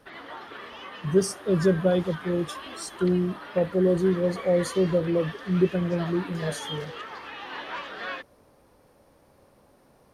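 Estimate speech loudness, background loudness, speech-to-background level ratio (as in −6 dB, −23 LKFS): −25.5 LKFS, −38.5 LKFS, 13.0 dB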